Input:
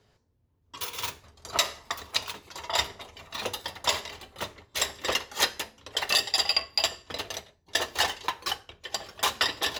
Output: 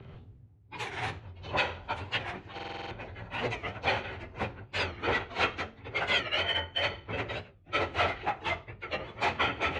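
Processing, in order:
partials spread apart or drawn together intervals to 85%
reversed playback
upward compression, threshold −46 dBFS
reversed playback
low-shelf EQ 230 Hz +12 dB
in parallel at −8 dB: wave folding −28 dBFS
on the sum: low-pass filter 2,800 Hz 12 dB per octave
buffer that repeats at 0:02.54, samples 2,048, times 7
wow of a warped record 45 rpm, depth 160 cents

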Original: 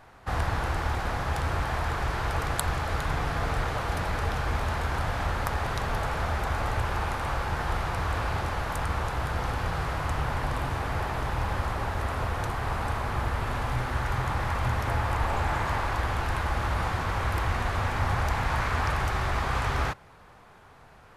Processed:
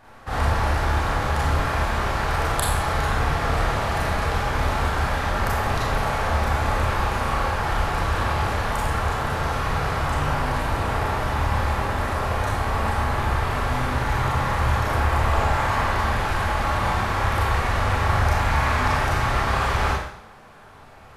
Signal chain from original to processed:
four-comb reverb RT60 0.67 s, combs from 28 ms, DRR −5.5 dB

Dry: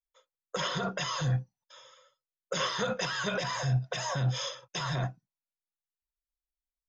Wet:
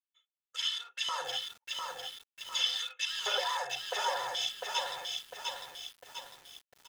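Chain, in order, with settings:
adaptive Wiener filter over 9 samples
low-shelf EQ 230 Hz −11 dB
comb filter 2.3 ms, depth 88%
auto-filter high-pass square 0.46 Hz 690–3,100 Hz
feedback echo at a low word length 701 ms, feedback 55%, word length 8 bits, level −3 dB
level −3.5 dB

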